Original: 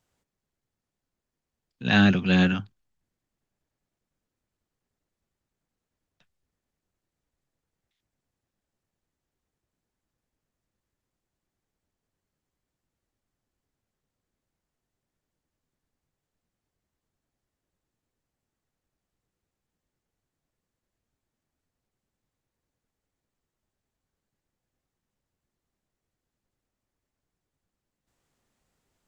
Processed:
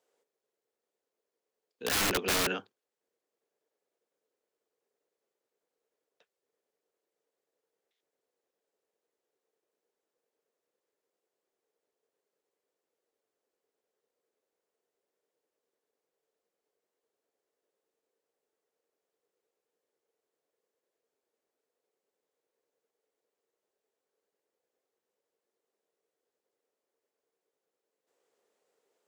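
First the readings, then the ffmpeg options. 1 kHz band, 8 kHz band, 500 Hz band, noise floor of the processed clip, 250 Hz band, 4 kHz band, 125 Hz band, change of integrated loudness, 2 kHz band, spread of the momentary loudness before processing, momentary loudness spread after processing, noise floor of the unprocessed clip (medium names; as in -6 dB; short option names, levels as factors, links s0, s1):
-3.0 dB, no reading, -2.5 dB, under -85 dBFS, -17.5 dB, -2.0 dB, -19.5 dB, -7.5 dB, -7.5 dB, 13 LU, 11 LU, under -85 dBFS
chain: -af "highpass=f=450:t=q:w=4.9,aeval=exprs='(mod(8.91*val(0)+1,2)-1)/8.91':c=same,volume=0.668"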